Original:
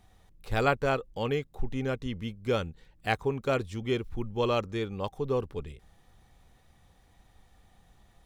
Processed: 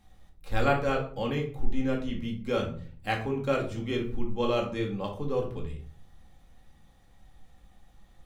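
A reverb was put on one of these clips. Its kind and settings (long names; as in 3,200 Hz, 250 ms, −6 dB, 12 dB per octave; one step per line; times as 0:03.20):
rectangular room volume 420 cubic metres, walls furnished, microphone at 2.2 metres
level −3.5 dB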